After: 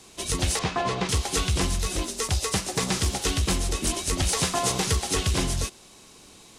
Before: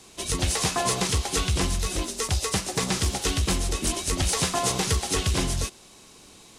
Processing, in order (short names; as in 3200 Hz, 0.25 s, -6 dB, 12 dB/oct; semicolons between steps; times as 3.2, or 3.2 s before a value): 0.59–1.09 LPF 3200 Hz 12 dB/oct